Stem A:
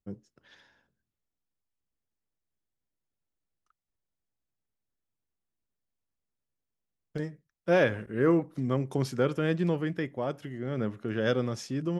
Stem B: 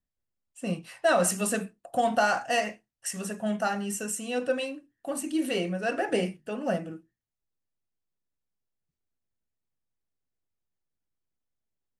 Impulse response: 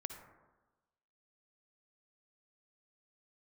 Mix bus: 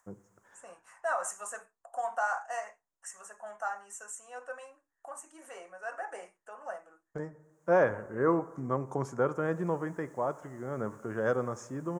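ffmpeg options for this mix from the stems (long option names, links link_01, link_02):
-filter_complex "[0:a]volume=-9dB,asplit=2[link_01][link_02];[link_02]volume=-7.5dB[link_03];[1:a]highpass=910,acompressor=mode=upward:threshold=-39dB:ratio=2.5,volume=-1dB,afade=type=in:start_time=9.23:duration=0.41:silence=0.298538[link_04];[2:a]atrim=start_sample=2205[link_05];[link_03][link_05]afir=irnorm=-1:irlink=0[link_06];[link_01][link_04][link_06]amix=inputs=3:normalize=0,firequalizer=gain_entry='entry(260,0);entry(450,5);entry(990,13);entry(2700,-11);entry(4200,-17);entry(6700,6);entry(12000,-9)':delay=0.05:min_phase=1"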